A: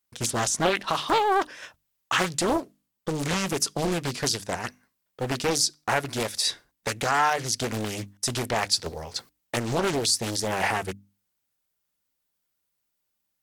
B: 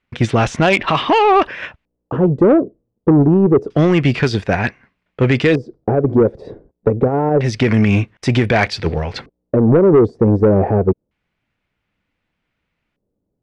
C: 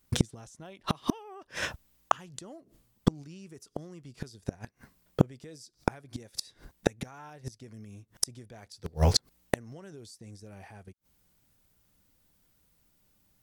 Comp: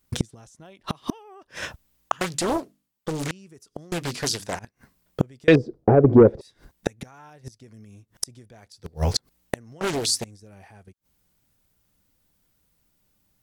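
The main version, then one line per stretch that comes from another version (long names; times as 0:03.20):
C
0:02.21–0:03.31: punch in from A
0:03.92–0:04.59: punch in from A
0:05.48–0:06.41: punch in from B
0:09.81–0:10.24: punch in from A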